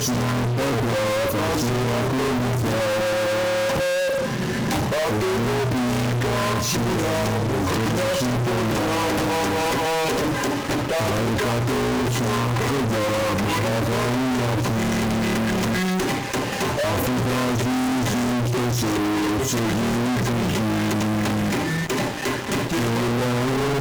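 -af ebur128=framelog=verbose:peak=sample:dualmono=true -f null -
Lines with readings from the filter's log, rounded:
Integrated loudness:
  I:         -19.1 LUFS
  Threshold: -29.1 LUFS
Loudness range:
  LRA:         0.5 LU
  Threshold: -39.1 LUFS
  LRA low:   -19.4 LUFS
  LRA high:  -18.8 LUFS
Sample peak:
  Peak:      -17.7 dBFS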